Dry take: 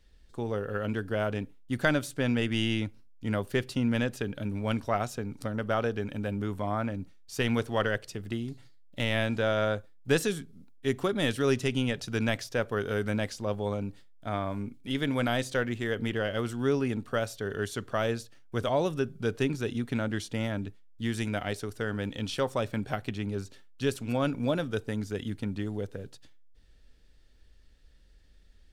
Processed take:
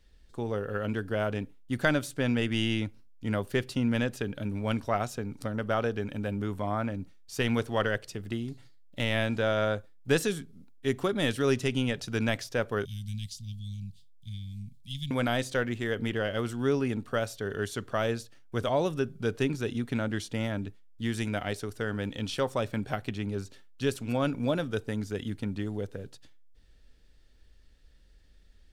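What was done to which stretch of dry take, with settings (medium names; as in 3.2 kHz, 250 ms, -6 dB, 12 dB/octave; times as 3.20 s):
12.85–15.11 s: elliptic band-stop 160–3400 Hz, stop band 50 dB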